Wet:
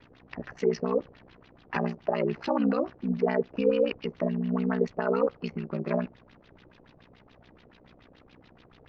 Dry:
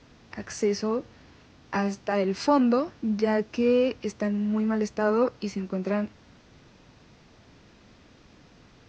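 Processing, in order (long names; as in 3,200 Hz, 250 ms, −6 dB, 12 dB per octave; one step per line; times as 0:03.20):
ring modulation 31 Hz
brickwall limiter −18 dBFS, peak gain reduction 7 dB
auto-filter low-pass sine 7 Hz 480–3,800 Hz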